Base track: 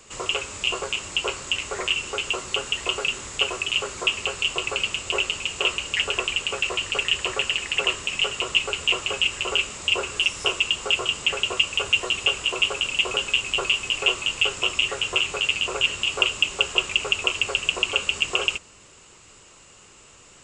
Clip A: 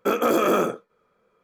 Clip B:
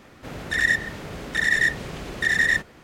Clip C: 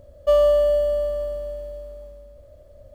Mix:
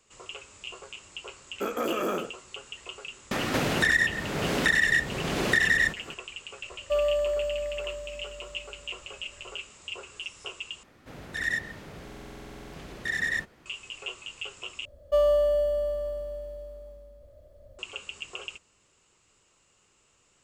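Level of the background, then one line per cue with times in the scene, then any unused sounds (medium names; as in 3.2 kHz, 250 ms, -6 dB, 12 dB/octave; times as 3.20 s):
base track -16 dB
1.55 s: add A -9 dB
3.31 s: add B -2.5 dB + three bands compressed up and down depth 100%
6.63 s: add C -9 dB
10.83 s: replace with B -8.5 dB + buffer glitch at 1.21 s, samples 2048, times 14
14.85 s: replace with C -5.5 dB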